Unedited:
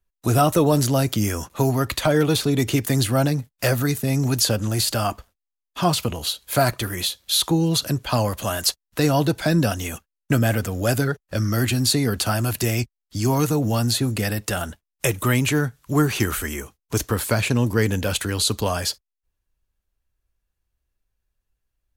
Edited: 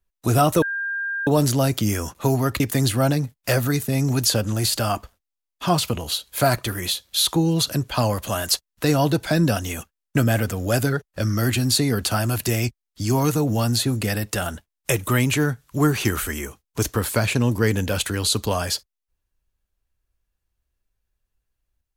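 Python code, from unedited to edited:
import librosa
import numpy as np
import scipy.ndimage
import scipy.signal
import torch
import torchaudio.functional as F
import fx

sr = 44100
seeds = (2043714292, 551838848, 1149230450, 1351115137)

y = fx.edit(x, sr, fx.insert_tone(at_s=0.62, length_s=0.65, hz=1600.0, db=-23.5),
    fx.cut(start_s=1.95, length_s=0.8), tone=tone)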